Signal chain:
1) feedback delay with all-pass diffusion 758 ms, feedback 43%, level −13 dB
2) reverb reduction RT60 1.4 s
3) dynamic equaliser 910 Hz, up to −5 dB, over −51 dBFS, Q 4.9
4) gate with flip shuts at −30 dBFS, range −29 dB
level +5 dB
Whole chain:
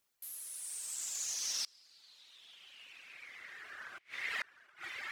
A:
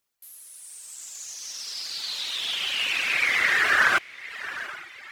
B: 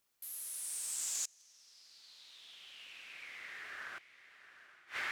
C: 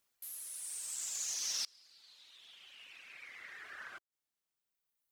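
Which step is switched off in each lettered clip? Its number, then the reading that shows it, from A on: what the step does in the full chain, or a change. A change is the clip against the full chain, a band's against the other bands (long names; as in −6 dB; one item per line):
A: 4, 8 kHz band −18.5 dB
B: 2, 4 kHz band −4.5 dB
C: 1, 8 kHz band +5.0 dB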